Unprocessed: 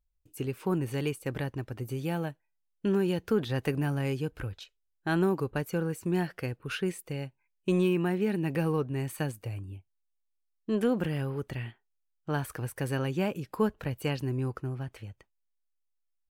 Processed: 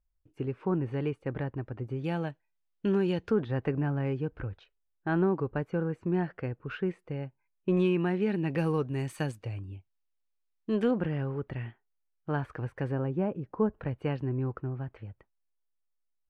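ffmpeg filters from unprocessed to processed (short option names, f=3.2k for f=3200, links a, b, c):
-af "asetnsamples=n=441:p=0,asendcmd='2.04 lowpass f 4200;3.31 lowpass f 1700;7.77 lowpass f 3900;8.58 lowpass f 7500;9.35 lowpass f 4300;10.91 lowpass f 2000;12.92 lowpass f 1000;13.73 lowpass f 1700',lowpass=1.7k"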